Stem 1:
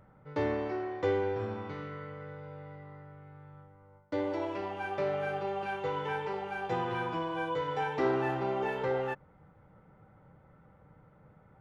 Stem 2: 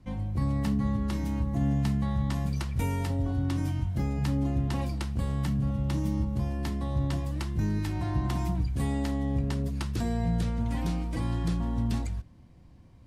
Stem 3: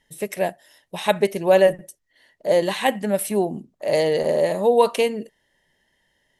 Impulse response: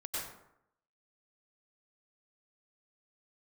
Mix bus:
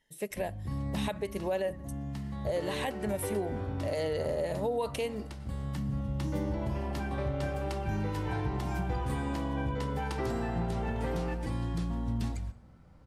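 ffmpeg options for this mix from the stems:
-filter_complex "[0:a]adelay=2200,volume=-6.5dB,asplit=2[a][b];[b]volume=-9dB[c];[1:a]adelay=300,volume=-4.5dB,asplit=2[d][e];[e]volume=-18dB[f];[2:a]volume=-8.5dB,asplit=2[g][h];[h]apad=whole_len=589513[i];[d][i]sidechaincompress=threshold=-30dB:ratio=8:attack=8.4:release=1260[j];[3:a]atrim=start_sample=2205[k];[c][f]amix=inputs=2:normalize=0[l];[l][k]afir=irnorm=-1:irlink=0[m];[a][j][g][m]amix=inputs=4:normalize=0,alimiter=limit=-23dB:level=0:latency=1:release=144"

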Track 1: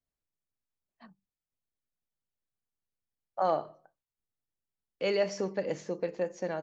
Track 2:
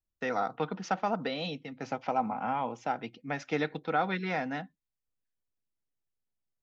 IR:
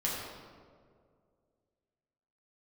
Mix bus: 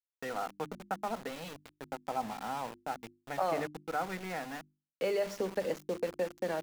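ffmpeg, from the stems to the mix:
-filter_complex "[0:a]acrossover=split=180|2000[a][b][c];[a]acompressor=threshold=-56dB:ratio=4[d];[b]acompressor=threshold=-31dB:ratio=4[e];[c]acompressor=threshold=-51dB:ratio=4[f];[d][e][f]amix=inputs=3:normalize=0,volume=2dB[g];[1:a]lowpass=2.3k,volume=-5.5dB[h];[g][h]amix=inputs=2:normalize=0,aeval=exprs='val(0)*gte(abs(val(0)),0.00944)':c=same,bandreject=f=50:t=h:w=6,bandreject=f=100:t=h:w=6,bandreject=f=150:t=h:w=6,bandreject=f=200:t=h:w=6,bandreject=f=250:t=h:w=6,bandreject=f=300:t=h:w=6,bandreject=f=350:t=h:w=6"

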